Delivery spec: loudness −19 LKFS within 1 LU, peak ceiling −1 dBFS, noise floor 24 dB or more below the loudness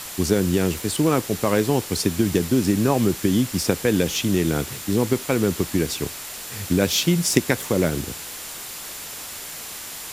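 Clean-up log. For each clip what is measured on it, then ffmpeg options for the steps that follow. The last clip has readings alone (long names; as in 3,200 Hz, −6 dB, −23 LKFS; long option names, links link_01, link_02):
interfering tone 7,200 Hz; level of the tone −44 dBFS; background noise floor −35 dBFS; target noise floor −47 dBFS; integrated loudness −22.5 LKFS; sample peak −2.0 dBFS; target loudness −19.0 LKFS
→ -af "bandreject=frequency=7200:width=30"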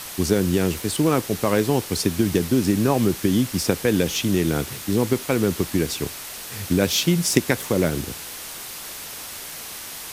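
interfering tone none found; background noise floor −36 dBFS; target noise floor −47 dBFS
→ -af "afftdn=noise_reduction=11:noise_floor=-36"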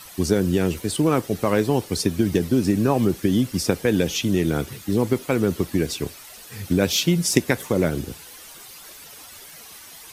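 background noise floor −43 dBFS; target noise floor −46 dBFS
→ -af "afftdn=noise_reduction=6:noise_floor=-43"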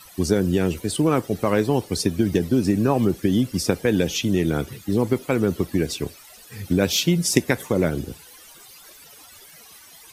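background noise floor −47 dBFS; integrated loudness −22.0 LKFS; sample peak −2.5 dBFS; target loudness −19.0 LKFS
→ -af "volume=3dB,alimiter=limit=-1dB:level=0:latency=1"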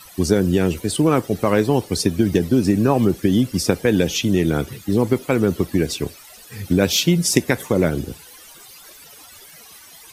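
integrated loudness −19.0 LKFS; sample peak −1.0 dBFS; background noise floor −44 dBFS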